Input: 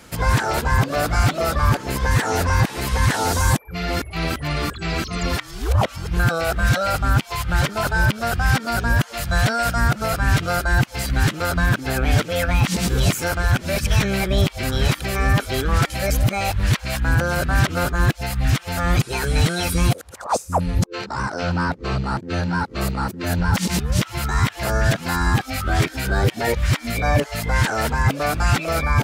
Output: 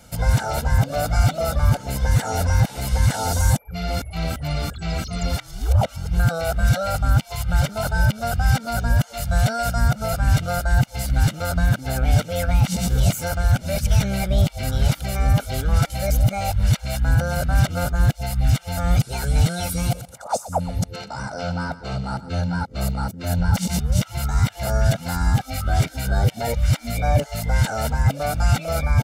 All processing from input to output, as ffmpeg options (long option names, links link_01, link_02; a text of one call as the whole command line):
ffmpeg -i in.wav -filter_complex "[0:a]asettb=1/sr,asplit=3[link_01][link_02][link_03];[link_01]atrim=end=19.664[link_04];[link_02]atrim=start=19.66:end=22.3,asetpts=PTS-STARTPTS,afade=type=in:duration=0.004:curve=qsin,afade=type=out:start_time=2.636:duration=0.004:curve=qsin,highpass=frequency=140:poles=1,aecho=1:1:123|246:0.168|0.0302,atrim=end_sample=116424[link_05];[link_03]atrim=start=22.296[link_06];[link_04][link_05]acrossfade=duration=0.004:curve1=hsin:curve2=qsin[link_07];[link_07][link_06]acrossfade=duration=0.004:curve1=qsin:curve2=hsin,equalizer=frequency=1800:width=0.69:gain=-7.5,aecho=1:1:1.4:0.68,volume=-2.5dB" out.wav